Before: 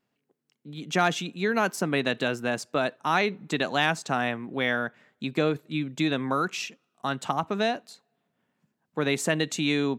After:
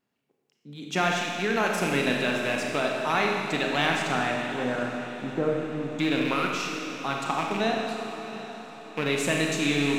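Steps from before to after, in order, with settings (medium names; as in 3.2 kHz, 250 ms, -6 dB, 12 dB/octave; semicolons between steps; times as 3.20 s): rattle on loud lows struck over -33 dBFS, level -20 dBFS; 4.39–5.99 s: low-pass 1.3 kHz 24 dB/octave; echo that smears into a reverb 750 ms, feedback 51%, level -12.5 dB; Schroeder reverb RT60 2.1 s, combs from 28 ms, DRR 0 dB; trim -2.5 dB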